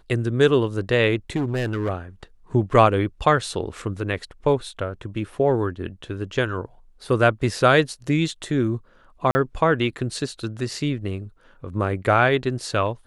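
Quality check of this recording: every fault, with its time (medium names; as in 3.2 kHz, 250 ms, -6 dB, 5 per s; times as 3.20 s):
1.35–1.90 s: clipped -20 dBFS
9.31–9.35 s: dropout 40 ms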